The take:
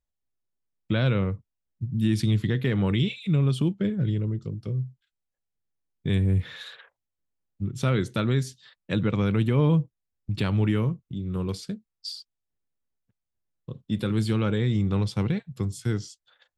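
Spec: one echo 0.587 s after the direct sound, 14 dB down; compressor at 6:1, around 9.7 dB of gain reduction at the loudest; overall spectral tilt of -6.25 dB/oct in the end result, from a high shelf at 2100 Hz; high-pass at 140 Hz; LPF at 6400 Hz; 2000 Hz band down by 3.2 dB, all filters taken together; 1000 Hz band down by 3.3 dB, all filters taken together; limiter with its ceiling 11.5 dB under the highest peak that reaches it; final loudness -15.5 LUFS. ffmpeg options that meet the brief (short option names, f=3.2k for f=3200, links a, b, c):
-af "highpass=140,lowpass=6.4k,equalizer=f=1k:t=o:g=-3.5,equalizer=f=2k:t=o:g=-5,highshelf=f=2.1k:g=3.5,acompressor=threshold=-31dB:ratio=6,alimiter=level_in=5dB:limit=-24dB:level=0:latency=1,volume=-5dB,aecho=1:1:587:0.2,volume=23dB"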